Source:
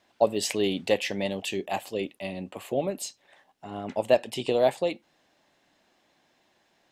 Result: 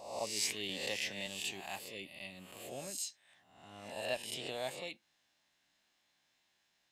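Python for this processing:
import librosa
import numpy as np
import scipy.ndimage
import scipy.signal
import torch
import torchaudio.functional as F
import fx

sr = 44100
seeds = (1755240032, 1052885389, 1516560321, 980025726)

y = fx.spec_swells(x, sr, rise_s=0.79)
y = fx.tone_stack(y, sr, knobs='5-5-5')
y = fx.band_squash(y, sr, depth_pct=40, at=(0.69, 1.27))
y = y * librosa.db_to_amplitude(-1.0)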